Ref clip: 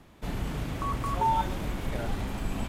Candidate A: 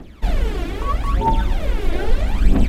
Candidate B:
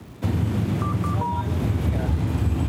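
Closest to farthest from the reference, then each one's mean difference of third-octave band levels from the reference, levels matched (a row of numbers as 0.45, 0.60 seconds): A, B; 3.5, 6.0 decibels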